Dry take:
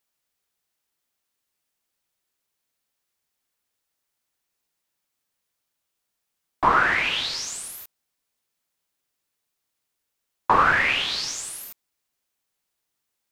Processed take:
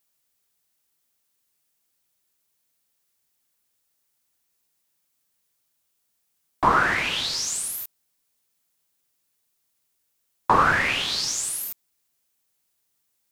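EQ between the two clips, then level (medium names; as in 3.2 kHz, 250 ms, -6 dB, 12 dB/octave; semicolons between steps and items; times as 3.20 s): peaking EQ 140 Hz +4 dB 2.4 oct; treble shelf 5.4 kHz +8.5 dB; dynamic bell 2.5 kHz, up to -4 dB, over -31 dBFS, Q 0.98; 0.0 dB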